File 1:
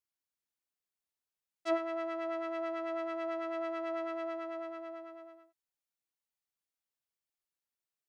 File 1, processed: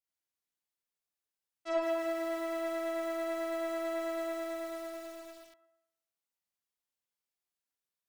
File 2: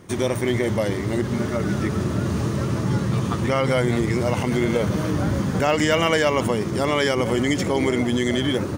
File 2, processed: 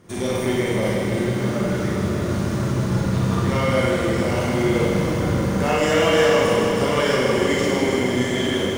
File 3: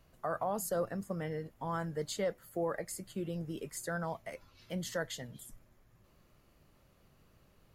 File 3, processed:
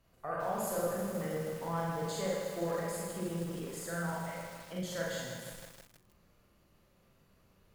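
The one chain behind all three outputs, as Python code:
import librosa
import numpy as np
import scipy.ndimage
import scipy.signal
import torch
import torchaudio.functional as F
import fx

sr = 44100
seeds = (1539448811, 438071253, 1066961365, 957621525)

y = fx.cheby_harmonics(x, sr, harmonics=(8,), levels_db=(-26,), full_scale_db=-7.0)
y = fx.rev_schroeder(y, sr, rt60_s=0.8, comb_ms=32, drr_db=-4.0)
y = fx.echo_crushed(y, sr, ms=158, feedback_pct=80, bits=7, wet_db=-6.5)
y = y * 10.0 ** (-6.0 / 20.0)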